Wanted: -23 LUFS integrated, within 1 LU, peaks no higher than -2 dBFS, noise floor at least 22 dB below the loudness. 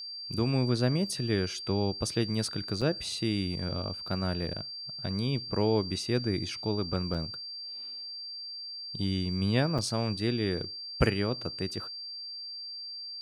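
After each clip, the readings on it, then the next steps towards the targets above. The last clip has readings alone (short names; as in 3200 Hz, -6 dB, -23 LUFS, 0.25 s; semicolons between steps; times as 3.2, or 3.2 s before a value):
dropouts 3; longest dropout 6.2 ms; steady tone 4700 Hz; tone level -38 dBFS; loudness -31.5 LUFS; peak -10.0 dBFS; loudness target -23.0 LUFS
-> interpolate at 2.81/7.14/9.78, 6.2 ms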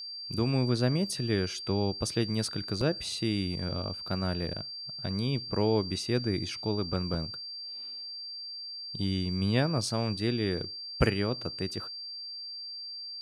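dropouts 0; steady tone 4700 Hz; tone level -38 dBFS
-> notch 4700 Hz, Q 30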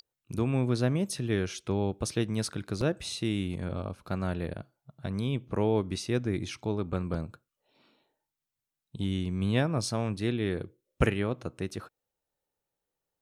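steady tone none; loudness -31.0 LUFS; peak -10.5 dBFS; loudness target -23.0 LUFS
-> gain +8 dB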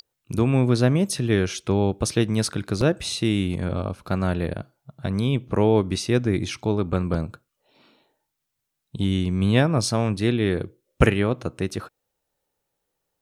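loudness -23.0 LUFS; peak -2.5 dBFS; noise floor -80 dBFS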